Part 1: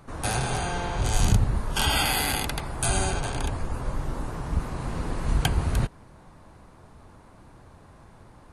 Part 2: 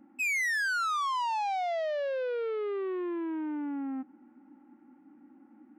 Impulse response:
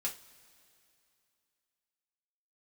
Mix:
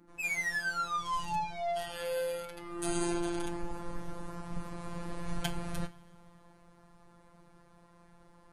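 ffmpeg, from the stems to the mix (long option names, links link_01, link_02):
-filter_complex "[0:a]volume=-9dB,afade=type=in:start_time=2.56:duration=0.49:silence=0.266073,asplit=2[link_01][link_02];[link_02]volume=-3.5dB[link_03];[1:a]volume=-0.5dB[link_04];[2:a]atrim=start_sample=2205[link_05];[link_03][link_05]afir=irnorm=-1:irlink=0[link_06];[link_01][link_04][link_06]amix=inputs=3:normalize=0,afftfilt=real='hypot(re,im)*cos(PI*b)':imag='0':win_size=1024:overlap=0.75"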